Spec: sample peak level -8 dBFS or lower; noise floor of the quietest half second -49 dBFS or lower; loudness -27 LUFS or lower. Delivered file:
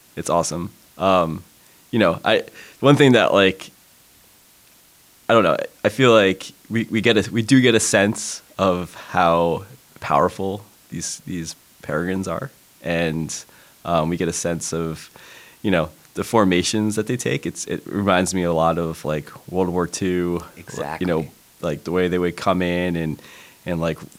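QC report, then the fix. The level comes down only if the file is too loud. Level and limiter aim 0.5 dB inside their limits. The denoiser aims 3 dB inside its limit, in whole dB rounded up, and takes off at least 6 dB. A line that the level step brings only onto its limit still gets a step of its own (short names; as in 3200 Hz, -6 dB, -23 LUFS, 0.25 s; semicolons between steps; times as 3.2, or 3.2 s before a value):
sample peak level -2.0 dBFS: fail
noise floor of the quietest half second -52 dBFS: OK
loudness -20.5 LUFS: fail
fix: gain -7 dB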